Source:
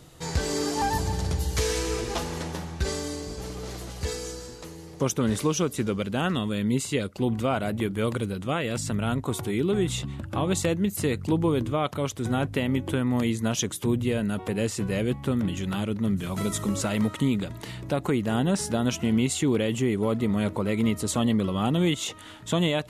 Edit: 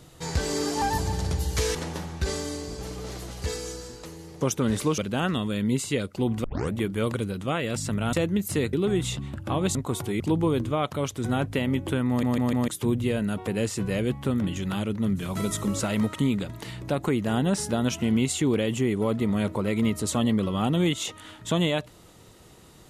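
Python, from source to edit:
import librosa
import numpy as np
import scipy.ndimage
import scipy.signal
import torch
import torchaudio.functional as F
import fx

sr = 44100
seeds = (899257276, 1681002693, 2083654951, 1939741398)

y = fx.edit(x, sr, fx.cut(start_s=1.75, length_s=0.59),
    fx.cut(start_s=5.57, length_s=0.42),
    fx.tape_start(start_s=7.45, length_s=0.29),
    fx.swap(start_s=9.14, length_s=0.45, other_s=10.61, other_length_s=0.6),
    fx.stutter_over(start_s=13.09, slice_s=0.15, count=4), tone=tone)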